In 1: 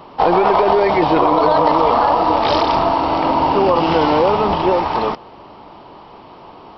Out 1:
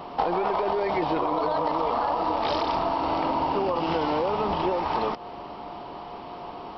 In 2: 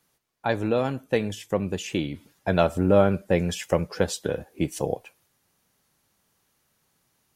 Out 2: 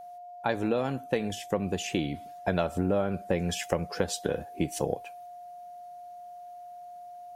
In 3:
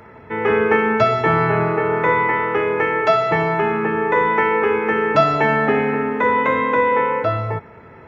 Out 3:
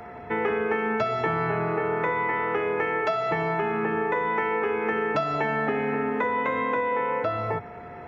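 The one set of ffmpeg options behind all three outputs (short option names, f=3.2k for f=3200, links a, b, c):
-af "equalizer=f=110:w=7:g=-8,acompressor=threshold=-23dB:ratio=6,aeval=exprs='val(0)+0.00794*sin(2*PI*710*n/s)':c=same"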